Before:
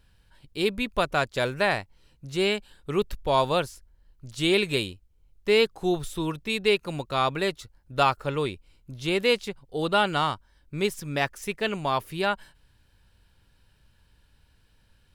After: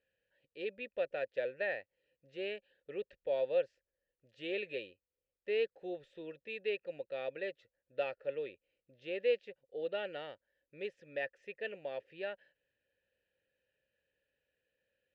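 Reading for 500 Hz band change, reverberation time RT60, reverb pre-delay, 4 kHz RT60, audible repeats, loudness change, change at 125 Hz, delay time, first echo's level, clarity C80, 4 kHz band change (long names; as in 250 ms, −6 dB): −10.0 dB, no reverb audible, no reverb audible, no reverb audible, no echo audible, −13.0 dB, −28.5 dB, no echo audible, no echo audible, no reverb audible, −20.5 dB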